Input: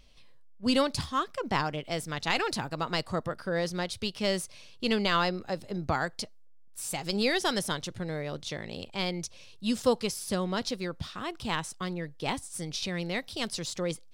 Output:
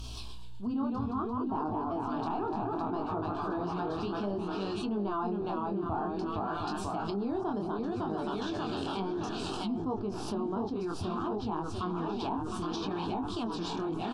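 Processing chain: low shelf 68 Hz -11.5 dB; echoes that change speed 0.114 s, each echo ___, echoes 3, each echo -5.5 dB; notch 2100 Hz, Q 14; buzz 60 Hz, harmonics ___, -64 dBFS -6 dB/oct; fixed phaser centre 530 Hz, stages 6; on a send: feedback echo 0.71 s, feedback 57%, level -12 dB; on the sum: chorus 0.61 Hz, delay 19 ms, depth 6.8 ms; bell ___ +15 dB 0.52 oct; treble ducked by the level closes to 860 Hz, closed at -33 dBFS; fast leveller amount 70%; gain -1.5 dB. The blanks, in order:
-1 st, 3, 110 Hz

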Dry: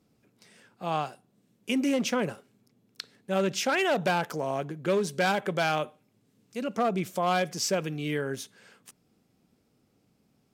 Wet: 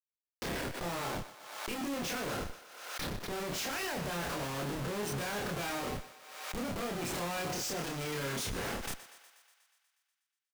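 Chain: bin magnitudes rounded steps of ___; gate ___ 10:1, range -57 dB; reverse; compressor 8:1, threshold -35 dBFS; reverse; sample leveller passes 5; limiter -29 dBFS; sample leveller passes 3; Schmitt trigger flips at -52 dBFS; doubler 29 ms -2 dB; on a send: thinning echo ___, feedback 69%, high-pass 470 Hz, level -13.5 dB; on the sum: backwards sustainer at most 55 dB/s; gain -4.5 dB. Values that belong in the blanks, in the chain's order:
30 dB, -59 dBFS, 0.121 s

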